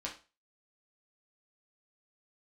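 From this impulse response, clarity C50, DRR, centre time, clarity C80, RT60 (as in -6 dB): 10.0 dB, -3.5 dB, 19 ms, 16.0 dB, 0.35 s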